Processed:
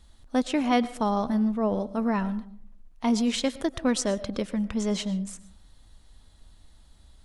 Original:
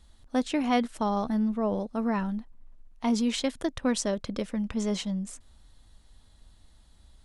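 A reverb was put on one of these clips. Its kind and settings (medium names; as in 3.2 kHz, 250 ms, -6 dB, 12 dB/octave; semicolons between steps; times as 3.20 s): algorithmic reverb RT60 0.51 s, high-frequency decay 0.4×, pre-delay 75 ms, DRR 16.5 dB; trim +2 dB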